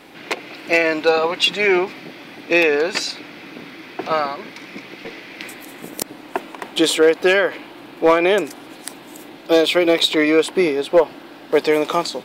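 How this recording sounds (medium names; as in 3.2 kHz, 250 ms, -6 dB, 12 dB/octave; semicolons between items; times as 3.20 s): noise floor -40 dBFS; spectral tilt -3.0 dB/octave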